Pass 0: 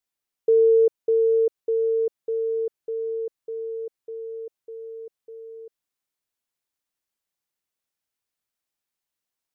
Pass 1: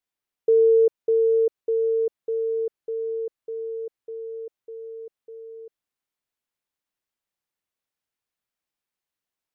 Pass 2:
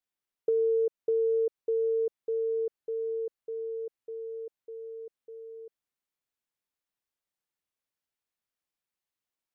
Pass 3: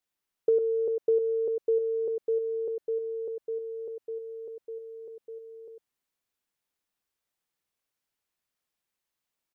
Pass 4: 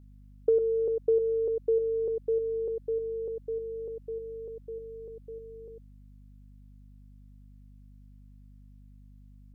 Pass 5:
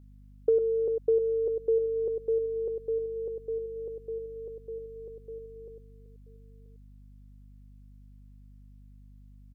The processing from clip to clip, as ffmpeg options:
-af "bass=f=250:g=0,treble=f=4000:g=-5"
-af "acompressor=threshold=0.1:ratio=6,volume=0.631"
-af "aecho=1:1:101:0.501,volume=1.5"
-af "aeval=exprs='val(0)+0.00282*(sin(2*PI*50*n/s)+sin(2*PI*2*50*n/s)/2+sin(2*PI*3*50*n/s)/3+sin(2*PI*4*50*n/s)/4+sin(2*PI*5*50*n/s)/5)':c=same"
-af "aecho=1:1:982:0.112"

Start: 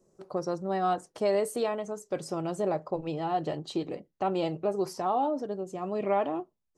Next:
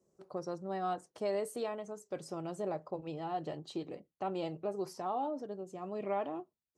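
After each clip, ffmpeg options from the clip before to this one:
-af "highpass=50,volume=0.398"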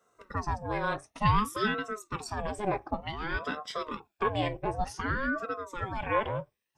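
-af "afftfilt=real='re*pow(10,14/40*sin(2*PI*(1.5*log(max(b,1)*sr/1024/100)/log(2)-(0.52)*(pts-256)/sr)))':imag='im*pow(10,14/40*sin(2*PI*(1.5*log(max(b,1)*sr/1024/100)/log(2)-(0.52)*(pts-256)/sr)))':win_size=1024:overlap=0.75,equalizer=f=2200:t=o:w=0.98:g=12,aeval=exprs='val(0)*sin(2*PI*550*n/s+550*0.65/0.55*sin(2*PI*0.55*n/s))':c=same,volume=2.11"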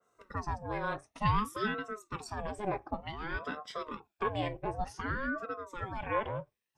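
-af "adynamicequalizer=threshold=0.00562:dfrequency=2700:dqfactor=0.7:tfrequency=2700:tqfactor=0.7:attack=5:release=100:ratio=0.375:range=3:mode=cutabove:tftype=highshelf,volume=0.631"

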